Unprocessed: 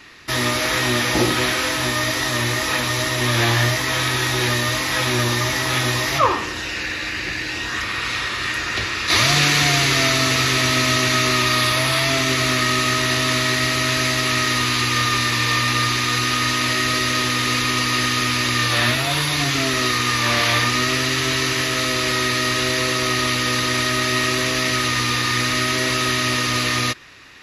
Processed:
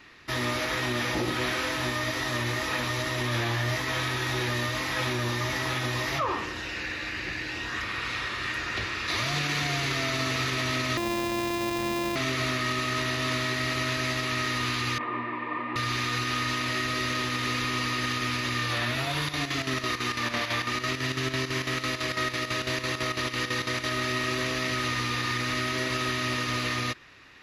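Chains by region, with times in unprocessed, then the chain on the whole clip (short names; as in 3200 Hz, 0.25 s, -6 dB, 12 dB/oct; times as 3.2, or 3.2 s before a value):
10.97–12.16 sample sorter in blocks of 128 samples + notch 1400 Hz, Q 7.5 + comb 3.7 ms, depth 38%
14.98–15.76 speaker cabinet 210–2100 Hz, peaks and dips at 230 Hz +3 dB, 340 Hz +7 dB, 670 Hz +4 dB, 1000 Hz +9 dB, 1500 Hz -9 dB + detuned doubles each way 32 cents
19.17–23.95 flutter echo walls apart 7.9 m, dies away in 0.37 s + chopper 6 Hz, depth 65%, duty 70%
whole clip: bell 9700 Hz -7.5 dB 1.9 oct; limiter -12.5 dBFS; gain -6.5 dB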